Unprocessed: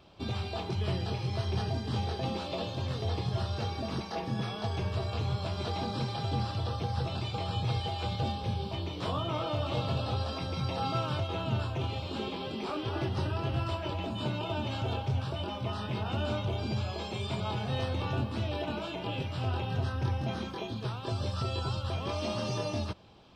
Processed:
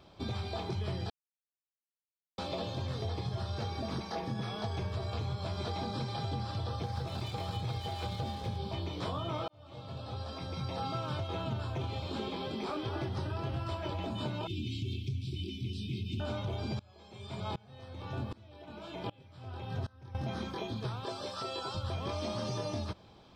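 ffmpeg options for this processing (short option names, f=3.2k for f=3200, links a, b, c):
-filter_complex "[0:a]asettb=1/sr,asplit=3[a][b][c];[a]atrim=end=6.834[d];[b]atrim=start=6.83:end=8.58,asetpts=PTS-STARTPTS,afade=t=in:d=0.004:c=qsin,afade=t=out:st=1.746:d=0.004:c=qsin,aeval=exprs='sgn(val(0))*max(abs(val(0))-0.00422,0)':c=same[e];[c]atrim=start=8.576[f];[d][e]acrossfade=d=0.004:c1=hsin:c2=qsin[g];[g][f]acrossfade=d=0.004:c1=qsin:c2=hsin,asettb=1/sr,asplit=3[h][i][j];[h]atrim=end=14.474[k];[i]atrim=start=14.47:end=16.2,asetpts=PTS-STARTPTS,afade=t=in:d=0.004:c=qsin,afade=t=out:st=1.726:d=0.004:c=qsin,asuperstop=centerf=940:order=20:qfactor=0.5[l];[j]atrim=start=16.196[m];[k][l]acrossfade=d=0.004:c1=hsin:c2=qsin[n];[n][m]acrossfade=d=0.004:c1=qsin:c2=hsin,asettb=1/sr,asplit=3[o][p][q];[o]atrim=end=16.794[r];[p]atrim=start=16.79:end=20.15,asetpts=PTS-STARTPTS,afade=t=in:d=0.004:c=qsin,afade=t=out:st=3.356:d=0.004:c=qsin,aeval=exprs='val(0)*pow(10,-26*if(lt(mod(-1.3*n/s,1),2*abs(-1.3)/1000),1-mod(-1.3*n/s,1)/(2*abs(-1.3)/1000),(mod(-1.3*n/s,1)-2*abs(-1.3)/1000)/(1-2*abs(-1.3)/1000))/20)':c=same[s];[q]atrim=start=20.146[t];[r][s]acrossfade=d=0.004:c1=hsin:c2=qsin[u];[u][t]acrossfade=d=0.004:c1=qsin:c2=hsin,asettb=1/sr,asplit=3[v][w][x];[v]atrim=end=21.054[y];[w]atrim=start=21.05:end=21.75,asetpts=PTS-STARTPTS,afade=t=in:d=0.004:c=qsin,afade=t=out:st=0.696:d=0.004:c=qsin,highpass=330[z];[x]atrim=start=21.746[aa];[y][z]acrossfade=d=0.004:c1=hsin:c2=qsin[ab];[ab][aa]acrossfade=d=0.004:c1=qsin:c2=hsin,asplit=4[ac][ad][ae][af];[ac]atrim=end=1.1,asetpts=PTS-STARTPTS,afade=t=out:st=1.096:d=0.004:c=hsin[ag];[ad]atrim=start=1.1:end=2.38,asetpts=PTS-STARTPTS,volume=0[ah];[ae]atrim=start=2.38:end=9.48,asetpts=PTS-STARTPTS,afade=t=in:d=0.004:c=hsin,afade=t=out:st=7.096:d=0.004:c=hsin[ai];[af]atrim=start=9.48,asetpts=PTS-STARTPTS,afade=t=in:d=1.72[aj];[ag][ah][ai][aj]concat=n=4:v=0:a=1,bandreject=f=2.8k:w=7.9,acompressor=threshold=-32dB:ratio=6"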